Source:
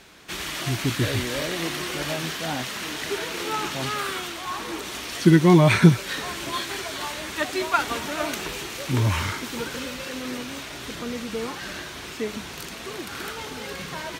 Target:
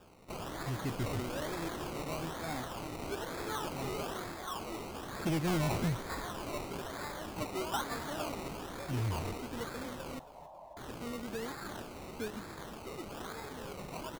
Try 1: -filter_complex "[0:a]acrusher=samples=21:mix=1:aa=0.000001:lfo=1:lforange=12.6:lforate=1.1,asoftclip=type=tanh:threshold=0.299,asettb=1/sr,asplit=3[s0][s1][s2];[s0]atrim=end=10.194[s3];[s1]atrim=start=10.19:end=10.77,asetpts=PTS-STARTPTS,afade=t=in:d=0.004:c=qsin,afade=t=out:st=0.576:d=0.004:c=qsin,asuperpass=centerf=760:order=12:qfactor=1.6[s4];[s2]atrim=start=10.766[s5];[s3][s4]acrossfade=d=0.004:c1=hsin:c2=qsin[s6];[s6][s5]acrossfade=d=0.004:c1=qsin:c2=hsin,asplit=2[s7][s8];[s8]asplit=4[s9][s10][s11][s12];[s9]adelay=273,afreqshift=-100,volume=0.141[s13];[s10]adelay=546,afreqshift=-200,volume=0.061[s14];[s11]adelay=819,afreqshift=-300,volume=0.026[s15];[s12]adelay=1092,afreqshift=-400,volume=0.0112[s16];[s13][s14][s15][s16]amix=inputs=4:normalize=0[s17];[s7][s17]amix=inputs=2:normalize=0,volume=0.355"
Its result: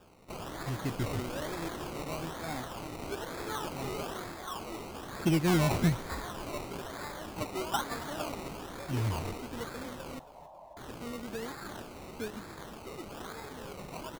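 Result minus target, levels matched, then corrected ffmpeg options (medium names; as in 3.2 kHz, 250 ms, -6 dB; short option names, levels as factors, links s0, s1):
saturation: distortion -8 dB
-filter_complex "[0:a]acrusher=samples=21:mix=1:aa=0.000001:lfo=1:lforange=12.6:lforate=1.1,asoftclip=type=tanh:threshold=0.106,asettb=1/sr,asplit=3[s0][s1][s2];[s0]atrim=end=10.194[s3];[s1]atrim=start=10.19:end=10.77,asetpts=PTS-STARTPTS,afade=t=in:d=0.004:c=qsin,afade=t=out:st=0.576:d=0.004:c=qsin,asuperpass=centerf=760:order=12:qfactor=1.6[s4];[s2]atrim=start=10.766[s5];[s3][s4]acrossfade=d=0.004:c1=hsin:c2=qsin[s6];[s6][s5]acrossfade=d=0.004:c1=qsin:c2=hsin,asplit=2[s7][s8];[s8]asplit=4[s9][s10][s11][s12];[s9]adelay=273,afreqshift=-100,volume=0.141[s13];[s10]adelay=546,afreqshift=-200,volume=0.061[s14];[s11]adelay=819,afreqshift=-300,volume=0.026[s15];[s12]adelay=1092,afreqshift=-400,volume=0.0112[s16];[s13][s14][s15][s16]amix=inputs=4:normalize=0[s17];[s7][s17]amix=inputs=2:normalize=0,volume=0.355"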